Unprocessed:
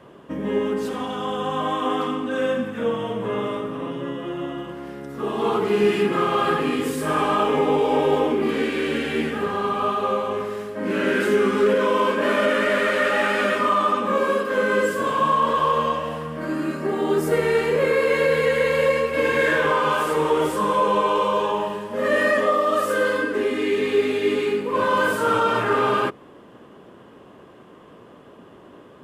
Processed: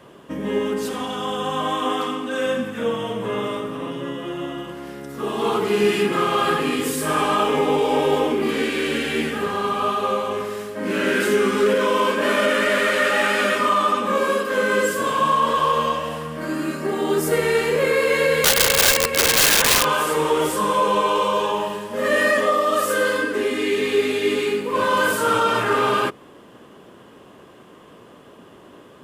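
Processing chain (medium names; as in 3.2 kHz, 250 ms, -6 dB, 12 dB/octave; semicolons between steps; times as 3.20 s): 1.92–2.47 s: high-pass 210 Hz 6 dB/octave; 18.44–19.85 s: integer overflow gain 14.5 dB; treble shelf 3.2 kHz +9.5 dB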